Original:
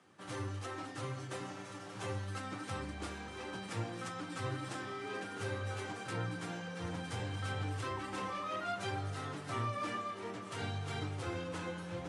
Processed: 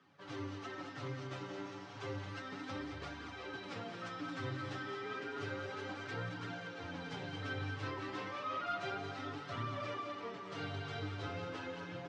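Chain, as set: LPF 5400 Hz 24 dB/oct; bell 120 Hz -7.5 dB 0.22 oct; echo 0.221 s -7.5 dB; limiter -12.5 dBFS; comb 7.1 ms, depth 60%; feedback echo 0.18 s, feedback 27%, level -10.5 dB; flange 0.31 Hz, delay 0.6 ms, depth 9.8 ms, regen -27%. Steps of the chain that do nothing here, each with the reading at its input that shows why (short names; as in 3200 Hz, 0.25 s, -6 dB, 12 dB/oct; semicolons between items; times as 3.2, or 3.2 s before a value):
limiter -12.5 dBFS: input peak -25.5 dBFS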